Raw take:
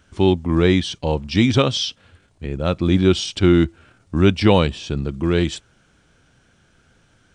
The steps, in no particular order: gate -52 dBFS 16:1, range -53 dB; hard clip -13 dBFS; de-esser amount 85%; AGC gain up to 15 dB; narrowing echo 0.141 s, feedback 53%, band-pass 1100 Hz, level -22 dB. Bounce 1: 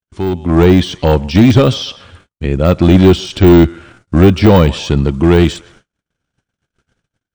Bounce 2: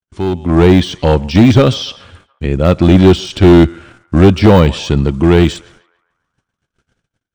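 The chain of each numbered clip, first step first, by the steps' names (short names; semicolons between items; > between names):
narrowing echo > gate > hard clip > de-esser > AGC; gate > narrowing echo > de-esser > hard clip > AGC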